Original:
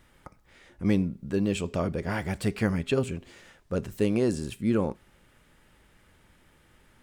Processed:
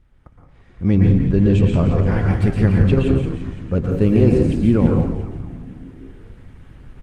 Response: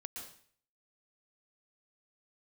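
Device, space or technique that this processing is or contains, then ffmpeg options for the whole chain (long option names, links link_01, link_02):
speakerphone in a meeting room: -filter_complex "[0:a]aemphasis=mode=reproduction:type=bsi,asplit=3[link_01][link_02][link_03];[link_01]afade=type=out:start_time=1:duration=0.02[link_04];[link_02]lowpass=frequency=8500:width=0.5412,lowpass=frequency=8500:width=1.3066,afade=type=in:start_time=1:duration=0.02,afade=type=out:start_time=2.03:duration=0.02[link_05];[link_03]afade=type=in:start_time=2.03:duration=0.02[link_06];[link_04][link_05][link_06]amix=inputs=3:normalize=0,asplit=9[link_07][link_08][link_09][link_10][link_11][link_12][link_13][link_14][link_15];[link_08]adelay=170,afreqshift=-71,volume=-9dB[link_16];[link_09]adelay=340,afreqshift=-142,volume=-13.2dB[link_17];[link_10]adelay=510,afreqshift=-213,volume=-17.3dB[link_18];[link_11]adelay=680,afreqshift=-284,volume=-21.5dB[link_19];[link_12]adelay=850,afreqshift=-355,volume=-25.6dB[link_20];[link_13]adelay=1020,afreqshift=-426,volume=-29.8dB[link_21];[link_14]adelay=1190,afreqshift=-497,volume=-33.9dB[link_22];[link_15]adelay=1360,afreqshift=-568,volume=-38.1dB[link_23];[link_07][link_16][link_17][link_18][link_19][link_20][link_21][link_22][link_23]amix=inputs=9:normalize=0[link_24];[1:a]atrim=start_sample=2205[link_25];[link_24][link_25]afir=irnorm=-1:irlink=0,dynaudnorm=framelen=240:gausssize=7:maxgain=12.5dB" -ar 48000 -c:a libopus -b:a 24k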